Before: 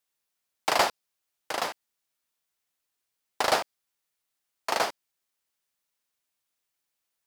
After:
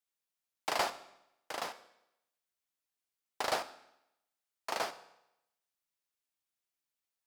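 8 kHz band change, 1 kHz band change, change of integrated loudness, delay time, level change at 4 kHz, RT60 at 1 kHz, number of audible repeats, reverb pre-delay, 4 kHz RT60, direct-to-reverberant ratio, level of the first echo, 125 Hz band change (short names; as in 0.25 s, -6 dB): -8.5 dB, -8.5 dB, -9.0 dB, none, -8.5 dB, 0.85 s, none, 15 ms, 0.80 s, 11.5 dB, none, -9.0 dB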